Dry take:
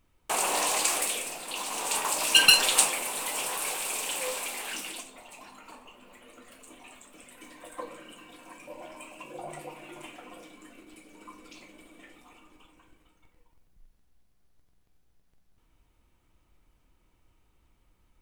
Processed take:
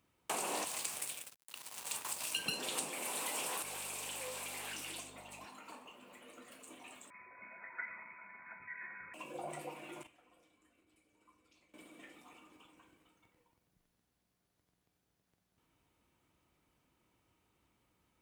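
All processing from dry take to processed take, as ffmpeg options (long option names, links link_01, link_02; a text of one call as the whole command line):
ffmpeg -i in.wav -filter_complex "[0:a]asettb=1/sr,asplit=3[link_01][link_02][link_03];[link_01]atrim=end=0.644[link_04];[link_02]atrim=start=0.64:end=2.46,asetpts=PTS-STARTPTS,afade=type=in:duration=0.004:curve=qsin,afade=type=out:start_time=1.816:duration=0.004:curve=qsin,highpass=frequency=1000:poles=1,equalizer=frequency=11000:width=1.1:gain=3,aeval=exprs='sgn(val(0))*max(abs(val(0))-0.0251,0)':channel_layout=same[link_05];[link_03]atrim=start=2.456[link_06];[link_04][link_05]acrossfade=duration=0.004:curve1=hsin:curve2=qsin[link_07];[link_07][link_06]acrossfade=duration=0.004:curve1=qsin:curve2=hsin,asettb=1/sr,asplit=3[link_08][link_09][link_10];[link_08]atrim=end=3.624[link_11];[link_09]atrim=start=3.62:end=5.45,asetpts=PTS-STARTPTS,afade=type=in:duration=0.004:curve=qsin,afade=type=out:start_time=1.826:duration=0.004:curve=qsin,acompressor=threshold=-37dB:ratio=4:attack=3.2:release=140:knee=1:detection=peak,aeval=exprs='val(0)+0.00251*(sin(2*PI*50*n/s)+sin(2*PI*2*50*n/s)/2+sin(2*PI*3*50*n/s)/3+sin(2*PI*4*50*n/s)/4+sin(2*PI*5*50*n/s)/5)':channel_layout=same[link_12];[link_10]atrim=start=5.446[link_13];[link_11][link_12]acrossfade=duration=0.004:curve1=hsin:curve2=qsin[link_14];[link_14][link_13]acrossfade=duration=0.004:curve1=qsin:curve2=hsin,asettb=1/sr,asplit=3[link_15][link_16][link_17];[link_15]atrim=end=7.104[link_18];[link_16]atrim=start=7.1:end=9.14,asetpts=PTS-STARTPTS,afade=type=in:duration=0.004:curve=qsin,afade=type=out:start_time=2.036:duration=0.004:curve=qsin,aeval=exprs='val(0)+0.00178*sin(2*PI*1500*n/s)':channel_layout=same,lowpass=frequency=2100:width_type=q:width=0.5098,lowpass=frequency=2100:width_type=q:width=0.6013,lowpass=frequency=2100:width_type=q:width=0.9,lowpass=frequency=2100:width_type=q:width=2.563,afreqshift=-2500[link_19];[link_17]atrim=start=9.136[link_20];[link_18][link_19]acrossfade=duration=0.004:curve1=hsin:curve2=qsin[link_21];[link_21][link_20]acrossfade=duration=0.004:curve1=qsin:curve2=hsin,asettb=1/sr,asplit=3[link_22][link_23][link_24];[link_22]atrim=end=10.034[link_25];[link_23]atrim=start=10.03:end=11.74,asetpts=PTS-STARTPTS,afade=type=in:duration=0.004:curve=qsin,afade=type=out:start_time=1.706:duration=0.004:curve=qsin,agate=range=-17dB:threshold=-42dB:ratio=16:release=100:detection=peak,lowshelf=frequency=130:width_type=q:width=1.5:gain=13.5[link_26];[link_24]atrim=start=11.736[link_27];[link_25][link_26]acrossfade=duration=0.004:curve1=hsin:curve2=qsin[link_28];[link_28][link_27]acrossfade=duration=0.004:curve1=qsin:curve2=hsin,highpass=110,acrossover=split=410[link_29][link_30];[link_30]acompressor=threshold=-32dB:ratio=10[link_31];[link_29][link_31]amix=inputs=2:normalize=0,volume=-3.5dB" out.wav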